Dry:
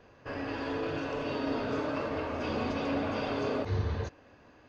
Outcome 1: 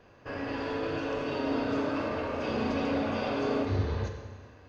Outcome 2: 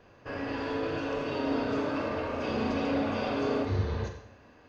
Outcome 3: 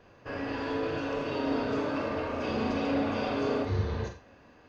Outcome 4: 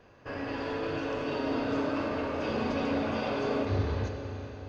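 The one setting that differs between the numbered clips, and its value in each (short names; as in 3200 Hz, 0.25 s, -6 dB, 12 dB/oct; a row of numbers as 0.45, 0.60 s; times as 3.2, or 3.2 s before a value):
Schroeder reverb, RT60: 1.5, 0.68, 0.32, 4.3 s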